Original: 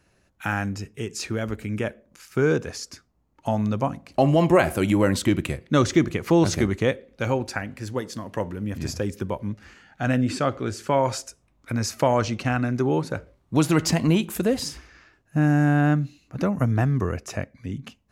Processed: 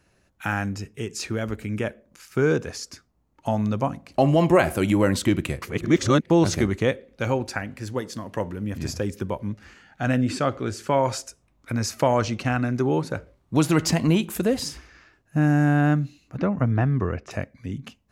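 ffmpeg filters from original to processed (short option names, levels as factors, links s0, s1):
-filter_complex "[0:a]asettb=1/sr,asplit=3[s0][s1][s2];[s0]atrim=end=16.374[s3];[s1]atrim=start=16.37:end=17.31,asetpts=PTS-STARTPTS,afade=t=in:d=0.004:c=qsin,afade=t=out:st=0.936:d=0.004:c=qsin,lowpass=3300[s4];[s2]atrim=start=17.306[s5];[s3][s4]acrossfade=d=0.004:c1=hsin:c2=qsin[s6];[s6][s5]acrossfade=d=0.004:c1=qsin:c2=hsin,asplit=3[s7][s8][s9];[s7]atrim=end=5.622[s10];[s8]atrim=start=5.618:end=6.302,asetpts=PTS-STARTPTS,areverse[s11];[s9]atrim=start=6.298[s12];[s10][s11]acrossfade=d=0.004:c1=hsin:c2=hsin[s13];[s13][s12]acrossfade=d=0.004:c1=hsin:c2=hsin"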